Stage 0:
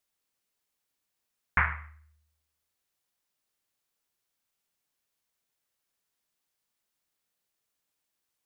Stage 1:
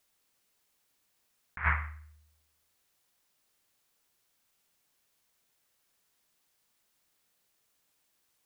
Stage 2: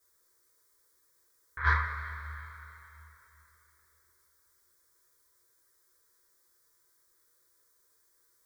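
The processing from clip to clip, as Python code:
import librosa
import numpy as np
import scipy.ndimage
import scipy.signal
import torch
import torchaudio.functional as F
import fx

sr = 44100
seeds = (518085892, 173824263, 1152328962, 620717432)

y1 = fx.over_compress(x, sr, threshold_db=-31.0, ratio=-0.5)
y1 = y1 * 10.0 ** (3.0 / 20.0)
y2 = fx.self_delay(y1, sr, depth_ms=0.071)
y2 = fx.fixed_phaser(y2, sr, hz=760.0, stages=6)
y2 = fx.rev_double_slope(y2, sr, seeds[0], early_s=0.23, late_s=3.4, knee_db=-18, drr_db=-4.5)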